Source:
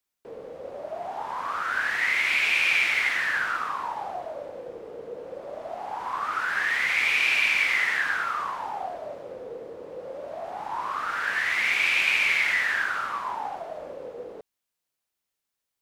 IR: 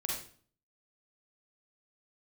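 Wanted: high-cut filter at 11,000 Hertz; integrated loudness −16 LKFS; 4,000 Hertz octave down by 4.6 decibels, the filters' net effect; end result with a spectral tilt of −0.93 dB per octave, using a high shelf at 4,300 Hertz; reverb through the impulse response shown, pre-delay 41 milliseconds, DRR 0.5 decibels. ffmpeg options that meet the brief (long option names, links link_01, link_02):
-filter_complex "[0:a]lowpass=11000,equalizer=frequency=4000:width_type=o:gain=-8.5,highshelf=frequency=4300:gain=3,asplit=2[link_01][link_02];[1:a]atrim=start_sample=2205,adelay=41[link_03];[link_02][link_03]afir=irnorm=-1:irlink=0,volume=-3.5dB[link_04];[link_01][link_04]amix=inputs=2:normalize=0,volume=7dB"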